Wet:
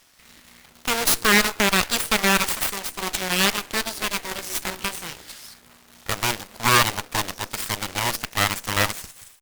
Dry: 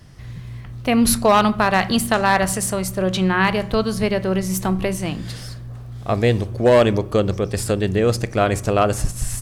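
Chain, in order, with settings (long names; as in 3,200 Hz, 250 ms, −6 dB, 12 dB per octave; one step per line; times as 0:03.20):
fade-out on the ending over 0.60 s
low-shelf EQ 360 Hz −7 dB
full-wave rectification
log-companded quantiser 4 bits
tilt shelving filter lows −6.5 dB, about 640 Hz
harmonic generator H 3 −14 dB, 6 −11 dB, 8 −22 dB, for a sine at −1 dBFS
level −1 dB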